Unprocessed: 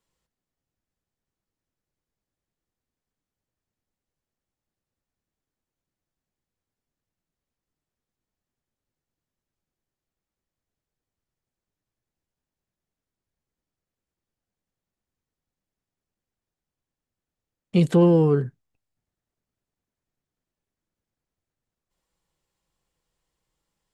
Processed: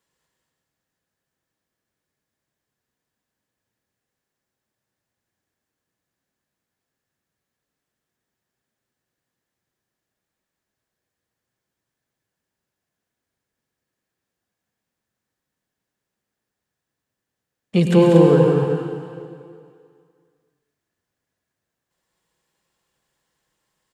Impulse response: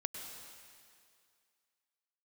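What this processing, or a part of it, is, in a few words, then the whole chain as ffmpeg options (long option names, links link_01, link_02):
stadium PA: -filter_complex "[0:a]highpass=frequency=150:poles=1,equalizer=frequency=1700:width_type=o:width=0.23:gain=7,aecho=1:1:192.4|236.2:0.501|0.447[link_01];[1:a]atrim=start_sample=2205[link_02];[link_01][link_02]afir=irnorm=-1:irlink=0,volume=5.5dB"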